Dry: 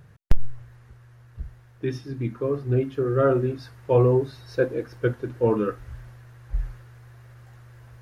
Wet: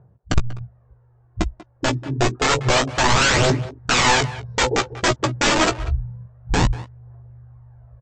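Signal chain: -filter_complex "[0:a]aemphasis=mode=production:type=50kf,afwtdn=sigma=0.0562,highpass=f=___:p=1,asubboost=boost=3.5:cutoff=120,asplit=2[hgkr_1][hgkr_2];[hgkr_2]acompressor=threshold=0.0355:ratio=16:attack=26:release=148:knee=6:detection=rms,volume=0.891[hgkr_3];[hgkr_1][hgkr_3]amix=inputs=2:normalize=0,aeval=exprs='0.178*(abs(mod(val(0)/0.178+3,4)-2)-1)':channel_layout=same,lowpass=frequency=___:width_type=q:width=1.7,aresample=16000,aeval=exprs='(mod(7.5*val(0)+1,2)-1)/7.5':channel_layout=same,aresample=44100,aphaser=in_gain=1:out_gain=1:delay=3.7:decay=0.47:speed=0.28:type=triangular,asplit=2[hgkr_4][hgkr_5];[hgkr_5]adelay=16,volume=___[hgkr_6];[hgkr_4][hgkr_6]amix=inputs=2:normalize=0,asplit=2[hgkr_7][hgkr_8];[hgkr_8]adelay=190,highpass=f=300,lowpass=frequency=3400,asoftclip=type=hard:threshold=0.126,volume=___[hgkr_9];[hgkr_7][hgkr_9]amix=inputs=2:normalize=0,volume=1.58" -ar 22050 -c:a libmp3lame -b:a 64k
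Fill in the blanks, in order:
42, 790, 0.398, 0.178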